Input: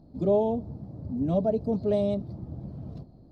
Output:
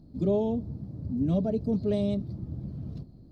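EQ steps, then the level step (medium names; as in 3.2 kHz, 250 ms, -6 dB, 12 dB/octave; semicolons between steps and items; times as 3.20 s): peaking EQ 750 Hz -10.5 dB 1.5 oct; +2.5 dB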